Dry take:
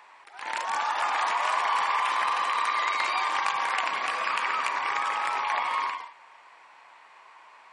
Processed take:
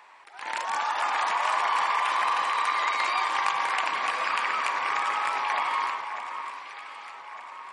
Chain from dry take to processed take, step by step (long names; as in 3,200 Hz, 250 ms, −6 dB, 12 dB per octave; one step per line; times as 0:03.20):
delay that swaps between a low-pass and a high-pass 604 ms, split 2,100 Hz, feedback 66%, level −8 dB